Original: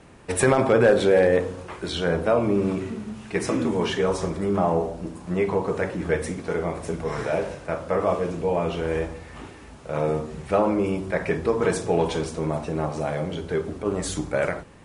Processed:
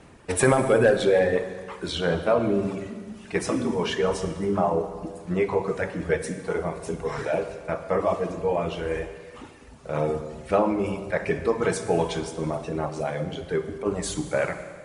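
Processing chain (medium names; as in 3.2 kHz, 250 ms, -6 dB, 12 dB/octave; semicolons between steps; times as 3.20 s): reverb removal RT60 1.6 s; reverberation RT60 1.8 s, pre-delay 47 ms, DRR 9 dB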